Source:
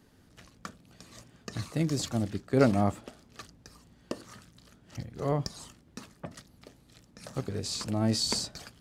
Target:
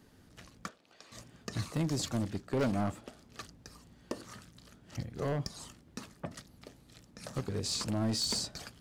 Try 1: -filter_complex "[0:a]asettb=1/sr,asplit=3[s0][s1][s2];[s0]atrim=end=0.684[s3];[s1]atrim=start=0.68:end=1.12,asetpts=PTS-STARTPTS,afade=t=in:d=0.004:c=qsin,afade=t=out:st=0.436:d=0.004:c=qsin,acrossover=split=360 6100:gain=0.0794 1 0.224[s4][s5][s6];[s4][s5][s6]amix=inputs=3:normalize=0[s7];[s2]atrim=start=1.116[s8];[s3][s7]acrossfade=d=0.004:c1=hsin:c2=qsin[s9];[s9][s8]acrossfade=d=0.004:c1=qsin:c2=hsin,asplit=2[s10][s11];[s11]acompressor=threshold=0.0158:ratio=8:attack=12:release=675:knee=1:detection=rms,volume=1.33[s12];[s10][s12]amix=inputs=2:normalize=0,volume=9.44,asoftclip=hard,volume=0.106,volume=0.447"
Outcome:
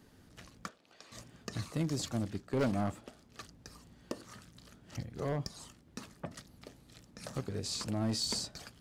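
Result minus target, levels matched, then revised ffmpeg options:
compression: peak gain reduction +7.5 dB
-filter_complex "[0:a]asettb=1/sr,asplit=3[s0][s1][s2];[s0]atrim=end=0.684[s3];[s1]atrim=start=0.68:end=1.12,asetpts=PTS-STARTPTS,afade=t=in:d=0.004:c=qsin,afade=t=out:st=0.436:d=0.004:c=qsin,acrossover=split=360 6100:gain=0.0794 1 0.224[s4][s5][s6];[s4][s5][s6]amix=inputs=3:normalize=0[s7];[s2]atrim=start=1.116[s8];[s3][s7]acrossfade=d=0.004:c1=hsin:c2=qsin[s9];[s9][s8]acrossfade=d=0.004:c1=qsin:c2=hsin,asplit=2[s10][s11];[s11]acompressor=threshold=0.0422:ratio=8:attack=12:release=675:knee=1:detection=rms,volume=1.33[s12];[s10][s12]amix=inputs=2:normalize=0,volume=9.44,asoftclip=hard,volume=0.106,volume=0.447"

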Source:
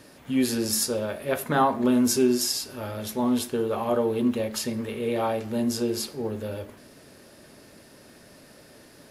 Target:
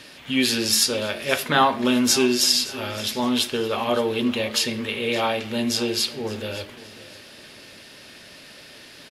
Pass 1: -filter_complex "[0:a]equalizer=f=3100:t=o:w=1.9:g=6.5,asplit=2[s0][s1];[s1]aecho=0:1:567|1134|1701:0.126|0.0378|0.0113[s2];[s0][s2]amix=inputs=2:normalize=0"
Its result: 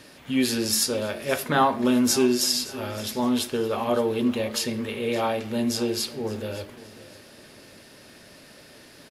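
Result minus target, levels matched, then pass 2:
4 kHz band -3.5 dB
-filter_complex "[0:a]equalizer=f=3100:t=o:w=1.9:g=15.5,asplit=2[s0][s1];[s1]aecho=0:1:567|1134|1701:0.126|0.0378|0.0113[s2];[s0][s2]amix=inputs=2:normalize=0"

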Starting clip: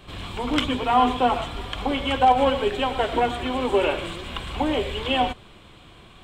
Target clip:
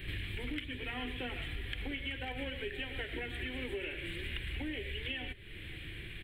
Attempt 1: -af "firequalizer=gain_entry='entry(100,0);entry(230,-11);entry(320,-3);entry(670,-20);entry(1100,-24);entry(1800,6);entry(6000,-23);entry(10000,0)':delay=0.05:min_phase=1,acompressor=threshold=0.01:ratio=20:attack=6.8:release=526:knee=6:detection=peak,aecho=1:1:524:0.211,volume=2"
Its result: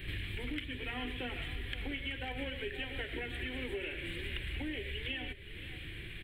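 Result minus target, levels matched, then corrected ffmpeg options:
echo-to-direct +7 dB
-af "firequalizer=gain_entry='entry(100,0);entry(230,-11);entry(320,-3);entry(670,-20);entry(1100,-24);entry(1800,6);entry(6000,-23);entry(10000,0)':delay=0.05:min_phase=1,acompressor=threshold=0.01:ratio=20:attack=6.8:release=526:knee=6:detection=peak,aecho=1:1:524:0.0944,volume=2"

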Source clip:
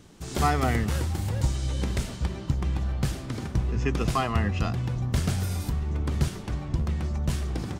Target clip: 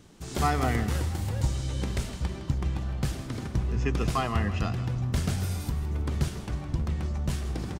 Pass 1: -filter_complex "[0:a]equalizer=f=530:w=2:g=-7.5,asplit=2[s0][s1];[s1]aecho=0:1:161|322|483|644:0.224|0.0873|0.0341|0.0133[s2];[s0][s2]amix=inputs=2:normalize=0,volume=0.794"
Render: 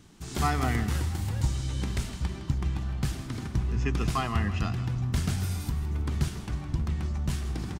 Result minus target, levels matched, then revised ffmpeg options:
500 Hz band -3.5 dB
-filter_complex "[0:a]asplit=2[s0][s1];[s1]aecho=0:1:161|322|483|644:0.224|0.0873|0.0341|0.0133[s2];[s0][s2]amix=inputs=2:normalize=0,volume=0.794"

